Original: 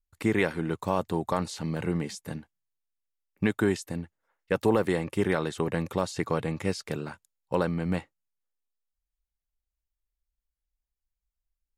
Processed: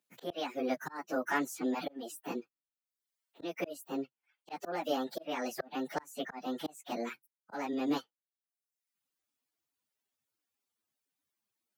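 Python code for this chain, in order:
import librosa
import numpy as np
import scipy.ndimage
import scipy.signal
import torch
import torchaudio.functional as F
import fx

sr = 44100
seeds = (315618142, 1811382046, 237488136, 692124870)

y = fx.pitch_bins(x, sr, semitones=8.0)
y = scipy.signal.sosfilt(scipy.signal.butter(4, 210.0, 'highpass', fs=sr, output='sos'), y)
y = fx.auto_swell(y, sr, attack_ms=413.0)
y = fx.dereverb_blind(y, sr, rt60_s=0.74)
y = fx.band_squash(y, sr, depth_pct=40)
y = F.gain(torch.from_numpy(y), 2.5).numpy()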